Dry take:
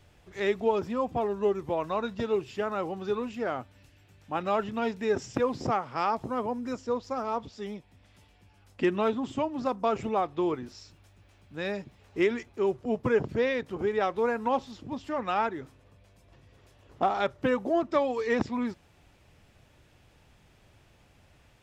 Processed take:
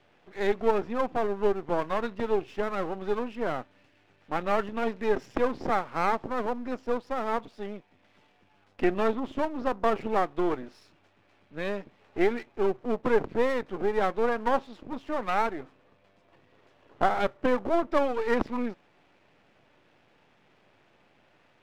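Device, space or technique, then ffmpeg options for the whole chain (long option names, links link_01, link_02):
crystal radio: -af "highpass=230,lowpass=2800,aeval=exprs='if(lt(val(0),0),0.251*val(0),val(0))':channel_layout=same,volume=5dB"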